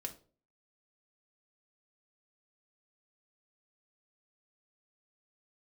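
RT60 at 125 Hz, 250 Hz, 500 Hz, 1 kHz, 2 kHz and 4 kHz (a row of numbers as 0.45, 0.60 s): 0.50, 0.50, 0.50, 0.35, 0.30, 0.30 s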